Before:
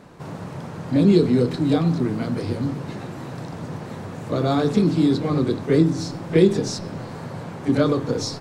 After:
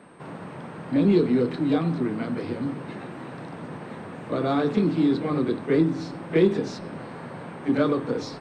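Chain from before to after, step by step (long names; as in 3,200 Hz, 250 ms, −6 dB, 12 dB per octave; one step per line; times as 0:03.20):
parametric band 590 Hz −5.5 dB 2.8 octaves
steady tone 8,500 Hz −49 dBFS
three-way crossover with the lows and the highs turned down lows −17 dB, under 190 Hz, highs −21 dB, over 3,200 Hz
in parallel at −9 dB: hard clipping −19 dBFS, distortion −14 dB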